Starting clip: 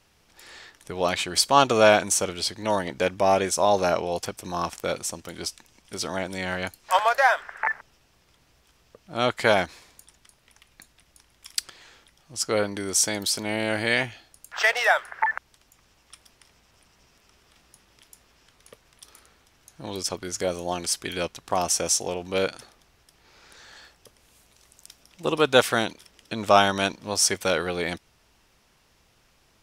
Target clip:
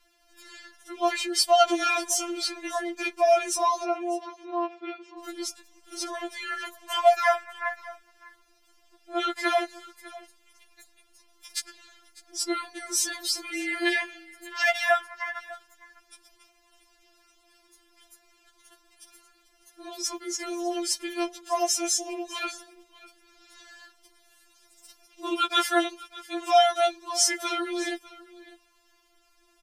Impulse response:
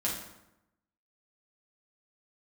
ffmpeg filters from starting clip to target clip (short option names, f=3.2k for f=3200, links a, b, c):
-filter_complex "[0:a]asplit=3[a][b][c];[a]afade=t=out:st=3.83:d=0.02[d];[b]highpass=250,equalizer=f=610:t=q:w=4:g=-6,equalizer=f=1.1k:t=q:w=4:g=-4,equalizer=f=1.6k:t=q:w=4:g=-9,lowpass=f=2.8k:w=0.5412,lowpass=f=2.8k:w=1.3066,afade=t=in:st=3.83:d=0.02,afade=t=out:st=5.18:d=0.02[e];[c]afade=t=in:st=5.18:d=0.02[f];[d][e][f]amix=inputs=3:normalize=0,aecho=1:1:600:0.106,afftfilt=real='re*4*eq(mod(b,16),0)':imag='im*4*eq(mod(b,16),0)':win_size=2048:overlap=0.75"